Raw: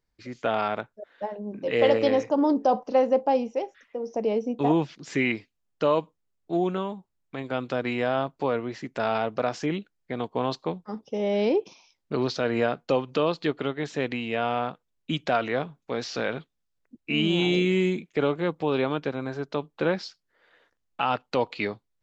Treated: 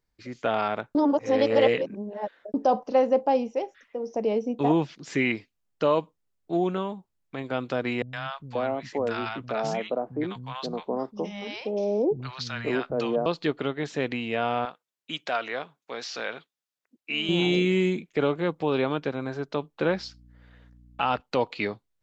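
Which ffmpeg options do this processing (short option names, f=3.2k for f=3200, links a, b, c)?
-filter_complex "[0:a]asettb=1/sr,asplit=3[a][b][c];[a]atrim=end=8.024[d];[b]atrim=start=8.02:end=13.26,asetpts=PTS-STARTPTS,afade=t=in:d=0.004:c=qsin,afade=t=out:st=5.236:d=0.004:c=qsin,acrossover=split=180|940[e][f][g];[g]adelay=110[h];[f]adelay=530[i];[e][i][h]amix=inputs=3:normalize=0,atrim=end_sample=231084[j];[c]atrim=start=13.256[k];[d][j]acrossfade=d=0.004:c1=hsin:c2=qsin[l];[l][k]acrossfade=d=0.004:c1=qsin:c2=hsin,asettb=1/sr,asplit=3[m][n][o];[m]atrim=end=14.654[p];[n]atrim=start=14.65:end=17.29,asetpts=PTS-STARTPTS,afade=t=in:d=0.004:c=qsin,afade=t=out:st=2.636:d=0.004:c=qsin,highpass=f=920:p=1[q];[o]atrim=start=17.286[r];[p][q]acrossfade=d=0.004:c1=hsin:c2=qsin[s];[s][r]acrossfade=d=0.004:c1=qsin:c2=hsin,asettb=1/sr,asplit=3[t][u][v];[t]atrim=end=19.884[w];[u]atrim=start=19.88:end=21.21,asetpts=PTS-STARTPTS,afade=t=in:d=0.004:c=qsin,afade=t=out:st=1.326:d=0.004:c=qsin,aeval=exprs='val(0)+0.00251*(sin(2*PI*60*n/s)+sin(2*PI*2*60*n/s)/2+sin(2*PI*3*60*n/s)/3+sin(2*PI*4*60*n/s)/4+sin(2*PI*5*60*n/s)/5)':c=same[x];[v]atrim=start=21.206[y];[w][x]acrossfade=d=0.004:c1=hsin:c2=qsin[z];[z][y]acrossfade=d=0.004:c1=qsin:c2=hsin,asplit=3[aa][ab][ac];[aa]atrim=end=0.952[ad];[ab]atrim=start=0.948:end=2.542,asetpts=PTS-STARTPTS,areverse[ae];[ac]atrim=start=2.538[af];[ad][ae]acrossfade=d=0.004:c1=hsin:c2=hsin[ag];[ag][af]acrossfade=d=0.004:c1=hsin:c2=hsin"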